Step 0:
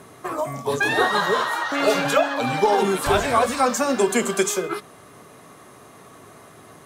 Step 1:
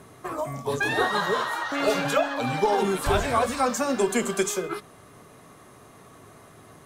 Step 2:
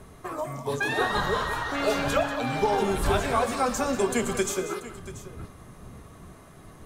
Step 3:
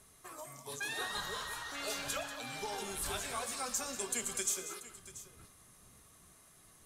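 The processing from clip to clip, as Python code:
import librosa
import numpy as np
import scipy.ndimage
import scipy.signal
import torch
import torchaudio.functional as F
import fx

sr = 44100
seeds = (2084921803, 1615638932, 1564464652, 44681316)

y1 = fx.low_shelf(x, sr, hz=96.0, db=10.5)
y1 = y1 * librosa.db_to_amplitude(-4.5)
y2 = fx.dmg_wind(y1, sr, seeds[0], corner_hz=150.0, level_db=-39.0)
y2 = fx.echo_multitap(y2, sr, ms=(116, 188, 685), db=(-17.0, -12.5, -15.5))
y2 = y2 * librosa.db_to_amplitude(-2.0)
y3 = scipy.signal.sosfilt(scipy.signal.butter(2, 12000.0, 'lowpass', fs=sr, output='sos'), y2)
y3 = F.preemphasis(torch.from_numpy(y3), 0.9).numpy()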